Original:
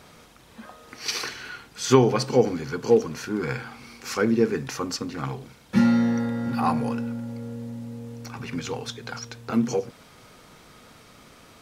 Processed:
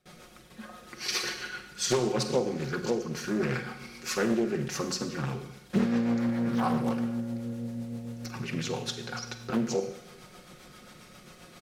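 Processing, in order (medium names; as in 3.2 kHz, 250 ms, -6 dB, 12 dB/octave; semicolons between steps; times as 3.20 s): rotary cabinet horn 7.5 Hz; compression 5:1, threshold -24 dBFS, peak gain reduction 10.5 dB; Schroeder reverb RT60 0.86 s, combs from 33 ms, DRR 7.5 dB; gate with hold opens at -44 dBFS; treble shelf 9.7 kHz +4 dB; band-stop 960 Hz, Q 12; comb 5.5 ms, depth 57%; loudspeaker Doppler distortion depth 0.54 ms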